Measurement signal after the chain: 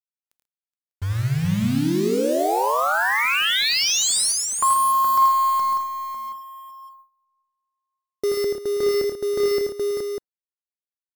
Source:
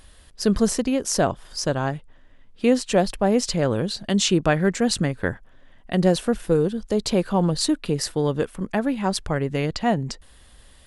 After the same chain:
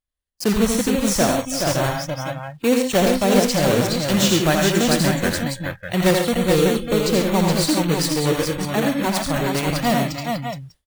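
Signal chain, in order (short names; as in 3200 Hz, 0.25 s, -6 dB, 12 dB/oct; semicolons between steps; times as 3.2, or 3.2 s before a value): block floating point 3-bit; tapped delay 82/107/138/323/421/597 ms -4.5/-9/-9.5/-15.5/-4/-7 dB; spectral noise reduction 20 dB; gate with hold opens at -37 dBFS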